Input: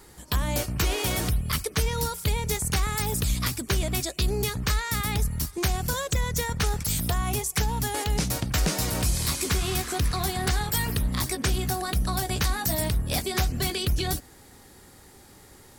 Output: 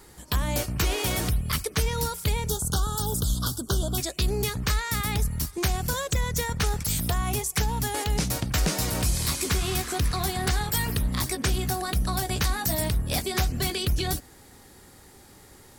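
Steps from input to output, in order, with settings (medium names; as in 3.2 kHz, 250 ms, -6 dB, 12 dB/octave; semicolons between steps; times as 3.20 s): 2.49–3.98 s: elliptic band-stop 1.5–3.2 kHz, stop band 40 dB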